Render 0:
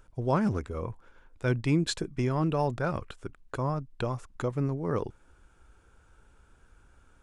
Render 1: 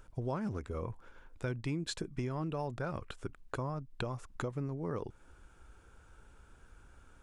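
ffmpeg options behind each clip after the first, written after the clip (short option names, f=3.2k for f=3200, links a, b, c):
-af "acompressor=threshold=-36dB:ratio=4,volume=1dB"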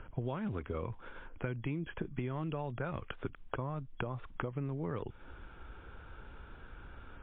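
-filter_complex "[0:a]acrossover=split=110|2300[a][b][c];[a]acompressor=threshold=-55dB:ratio=4[d];[b]acompressor=threshold=-46dB:ratio=4[e];[c]acompressor=threshold=-60dB:ratio=4[f];[d][e][f]amix=inputs=3:normalize=0,volume=9.5dB" -ar 8000 -c:a libmp3lame -b:a 32k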